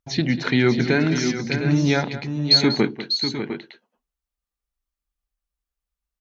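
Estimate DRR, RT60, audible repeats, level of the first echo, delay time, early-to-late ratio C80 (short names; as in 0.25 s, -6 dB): none, none, 3, -14.0 dB, 0.192 s, none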